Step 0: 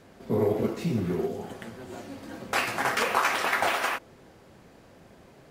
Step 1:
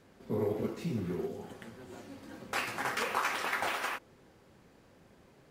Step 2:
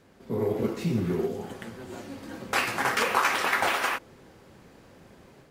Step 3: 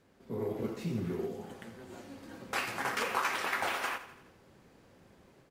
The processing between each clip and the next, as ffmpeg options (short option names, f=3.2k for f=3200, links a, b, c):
-af "equalizer=f=670:t=o:w=0.29:g=-4.5,volume=-7dB"
-af "dynaudnorm=f=360:g=3:m=5.5dB,volume=2.5dB"
-af "aecho=1:1:84|168|252|336|420:0.2|0.108|0.0582|0.0314|0.017,volume=-8dB"